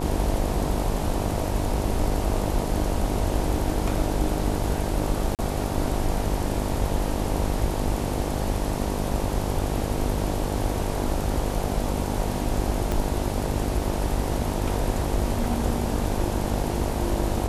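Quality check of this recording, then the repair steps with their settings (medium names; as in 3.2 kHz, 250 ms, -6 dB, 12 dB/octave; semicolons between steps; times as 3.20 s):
buzz 50 Hz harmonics 19 -29 dBFS
5.35–5.39 s: dropout 38 ms
12.92 s: pop -13 dBFS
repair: de-click; de-hum 50 Hz, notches 19; interpolate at 5.35 s, 38 ms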